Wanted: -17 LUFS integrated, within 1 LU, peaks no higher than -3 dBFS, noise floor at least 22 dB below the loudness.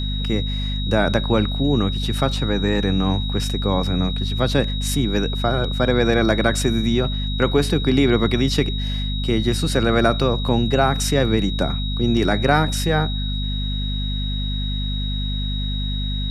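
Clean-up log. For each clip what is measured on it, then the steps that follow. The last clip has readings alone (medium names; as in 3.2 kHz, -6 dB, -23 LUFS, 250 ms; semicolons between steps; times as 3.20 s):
hum 50 Hz; highest harmonic 250 Hz; hum level -21 dBFS; steady tone 3.8 kHz; tone level -29 dBFS; loudness -20.5 LUFS; peak level -3.0 dBFS; loudness target -17.0 LUFS
-> hum notches 50/100/150/200/250 Hz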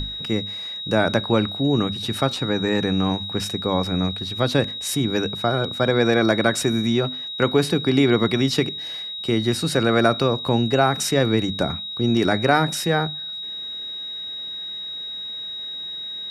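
hum not found; steady tone 3.8 kHz; tone level -29 dBFS
-> band-stop 3.8 kHz, Q 30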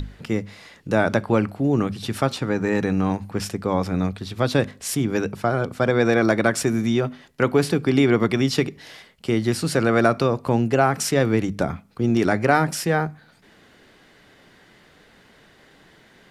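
steady tone not found; loudness -22.0 LUFS; peak level -4.0 dBFS; loudness target -17.0 LUFS
-> trim +5 dB; peak limiter -3 dBFS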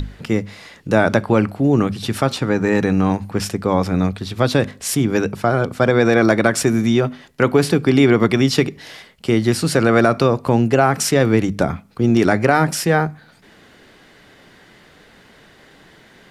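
loudness -17.5 LUFS; peak level -3.0 dBFS; noise floor -49 dBFS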